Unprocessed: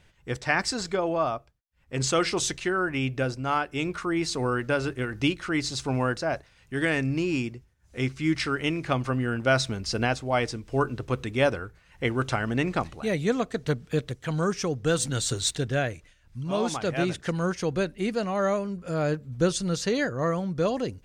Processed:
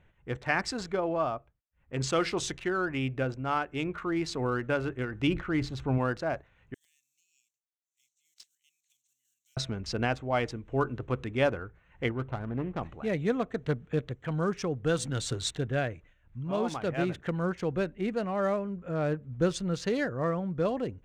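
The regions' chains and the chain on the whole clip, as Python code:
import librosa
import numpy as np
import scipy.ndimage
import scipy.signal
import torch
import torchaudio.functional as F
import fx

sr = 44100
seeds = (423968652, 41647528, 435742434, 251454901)

y = fx.chain(x, sr, fx.lowpass(hz=3000.0, slope=6),
    fx.low_shelf(hz=160.0, db=7.0),
    fx.sustainer(db_per_s=120.0), at=(5.27, 5.98))
y = fx.chain(y, sr, fx.block_float(bits=5),
    fx.cheby2_highpass(hz=1400.0, order=4, stop_db=70), at=(6.74, 9.57))
y = fx.chain(y, sr, fx.median_filter(points=25),
    fx.lowpass(hz=2100.0, slope=6),
    fx.peak_eq(hz=350.0, db=-4.0, octaves=2.7), at=(12.11, 12.82))
y = fx.wiener(y, sr, points=9)
y = fx.high_shelf(y, sr, hz=7900.0, db=-10.5)
y = y * librosa.db_to_amplitude(-3.0)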